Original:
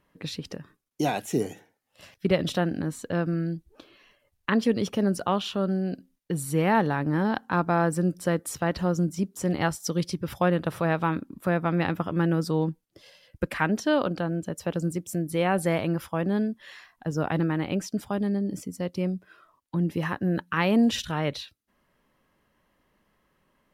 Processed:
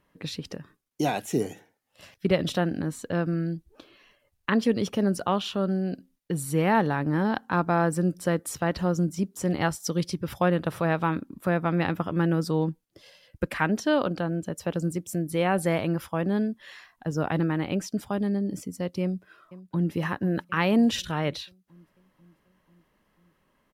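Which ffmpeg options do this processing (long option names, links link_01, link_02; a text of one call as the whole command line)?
ffmpeg -i in.wav -filter_complex "[0:a]asplit=2[link_01][link_02];[link_02]afade=type=in:start_time=19.02:duration=0.01,afade=type=out:start_time=19.95:duration=0.01,aecho=0:1:490|980|1470|1960|2450|2940|3430:0.141254|0.0918149|0.0596797|0.0387918|0.0252147|0.0163895|0.0106532[link_03];[link_01][link_03]amix=inputs=2:normalize=0" out.wav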